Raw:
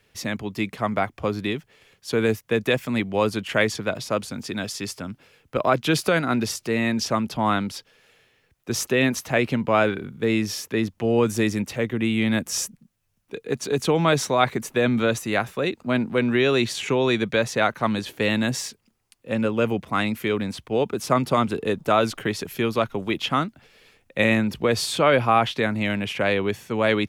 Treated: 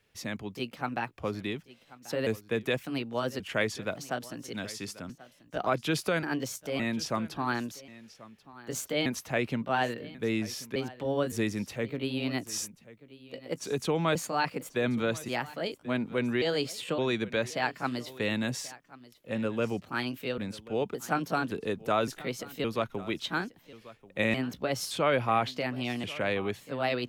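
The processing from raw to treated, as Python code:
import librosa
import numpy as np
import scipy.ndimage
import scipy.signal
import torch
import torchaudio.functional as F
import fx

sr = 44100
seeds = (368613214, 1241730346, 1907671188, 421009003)

y = fx.pitch_trill(x, sr, semitones=3.0, every_ms=566)
y = y + 10.0 ** (-19.0 / 20.0) * np.pad(y, (int(1086 * sr / 1000.0), 0))[:len(y)]
y = y * librosa.db_to_amplitude(-8.0)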